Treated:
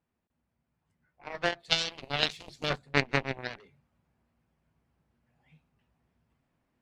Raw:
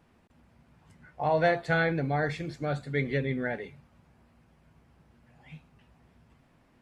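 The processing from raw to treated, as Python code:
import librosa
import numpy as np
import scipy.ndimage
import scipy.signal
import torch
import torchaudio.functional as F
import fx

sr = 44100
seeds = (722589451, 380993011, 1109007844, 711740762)

y = fx.rider(x, sr, range_db=10, speed_s=0.5)
y = fx.cheby_harmonics(y, sr, harmonics=(3,), levels_db=(-9,), full_scale_db=-14.0)
y = fx.high_shelf_res(y, sr, hz=2400.0, db=10.5, q=1.5, at=(1.59, 2.68), fade=0.02)
y = y * librosa.db_to_amplitude(8.0)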